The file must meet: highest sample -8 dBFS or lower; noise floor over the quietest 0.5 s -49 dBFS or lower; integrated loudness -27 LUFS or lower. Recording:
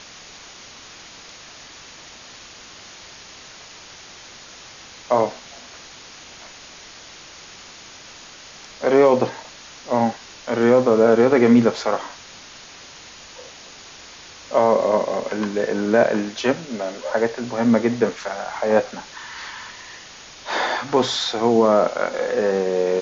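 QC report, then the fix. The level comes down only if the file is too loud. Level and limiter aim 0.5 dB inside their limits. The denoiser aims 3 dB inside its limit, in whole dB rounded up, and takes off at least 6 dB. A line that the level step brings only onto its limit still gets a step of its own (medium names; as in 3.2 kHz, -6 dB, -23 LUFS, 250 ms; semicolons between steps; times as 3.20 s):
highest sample -5.0 dBFS: fail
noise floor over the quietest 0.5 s -42 dBFS: fail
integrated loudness -19.5 LUFS: fail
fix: trim -8 dB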